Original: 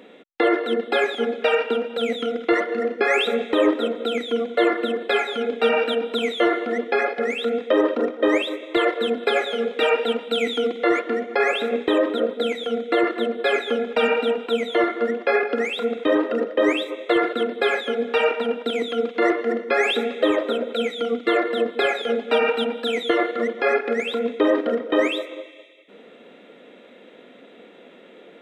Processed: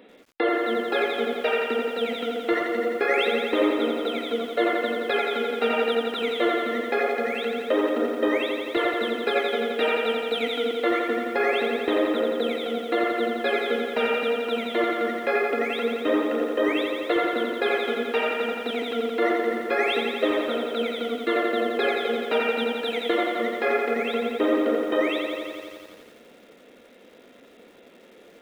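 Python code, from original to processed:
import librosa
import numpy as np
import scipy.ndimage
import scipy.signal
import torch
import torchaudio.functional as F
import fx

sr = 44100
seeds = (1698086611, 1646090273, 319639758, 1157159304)

y = fx.peak_eq(x, sr, hz=7000.0, db=-14.0, octaves=0.37)
y = fx.echo_crushed(y, sr, ms=86, feedback_pct=80, bits=8, wet_db=-5.5)
y = F.gain(torch.from_numpy(y), -4.5).numpy()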